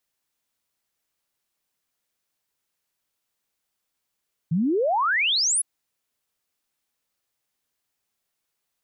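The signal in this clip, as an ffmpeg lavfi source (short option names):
-f lavfi -i "aevalsrc='0.112*clip(min(t,1.11-t)/0.01,0,1)*sin(2*PI*150*1.11/log(11000/150)*(exp(log(11000/150)*t/1.11)-1))':d=1.11:s=44100"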